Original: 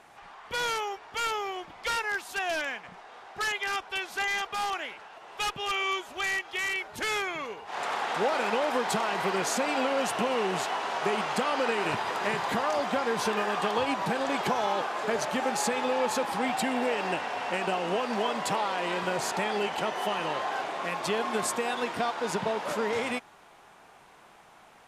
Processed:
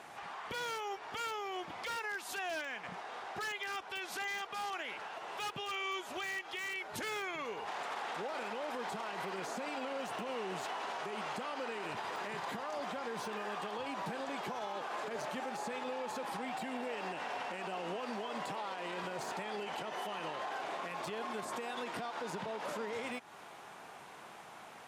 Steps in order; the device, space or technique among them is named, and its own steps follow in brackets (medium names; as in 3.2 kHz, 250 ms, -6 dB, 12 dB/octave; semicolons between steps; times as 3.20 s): podcast mastering chain (high-pass 100 Hz; de-esser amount 85%; compression 4:1, threshold -38 dBFS, peak gain reduction 13.5 dB; peak limiter -34.5 dBFS, peak gain reduction 10.5 dB; trim +3.5 dB; MP3 96 kbps 44.1 kHz)